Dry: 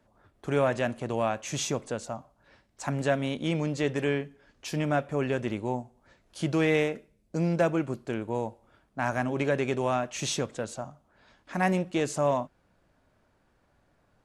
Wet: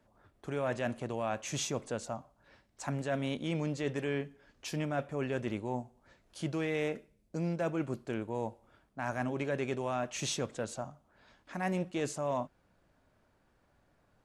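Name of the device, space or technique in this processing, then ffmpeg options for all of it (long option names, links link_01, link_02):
compression on the reversed sound: -af "areverse,acompressor=threshold=-27dB:ratio=6,areverse,volume=-2.5dB"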